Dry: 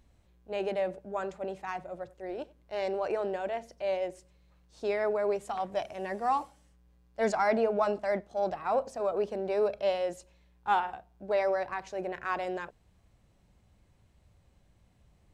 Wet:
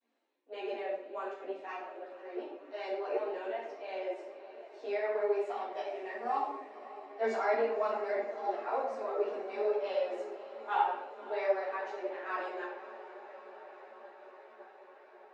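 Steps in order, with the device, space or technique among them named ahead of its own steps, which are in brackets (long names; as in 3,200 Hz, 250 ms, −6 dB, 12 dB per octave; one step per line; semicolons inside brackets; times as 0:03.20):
downward expander −60 dBFS
Butterworth high-pass 260 Hz 72 dB per octave
feedback delay with all-pass diffusion 558 ms, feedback 78%, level −15.5 dB
rectangular room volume 250 cubic metres, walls mixed, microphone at 1.7 metres
string-machine ensemble chorus (string-ensemble chorus; low-pass filter 4,400 Hz 12 dB per octave)
level −5.5 dB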